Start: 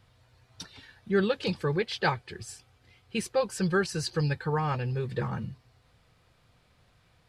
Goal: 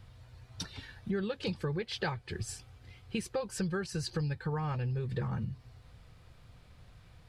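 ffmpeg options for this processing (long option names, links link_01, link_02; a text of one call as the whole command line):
ffmpeg -i in.wav -af "lowshelf=frequency=130:gain=11.5,acompressor=threshold=-34dB:ratio=5,volume=2dB" out.wav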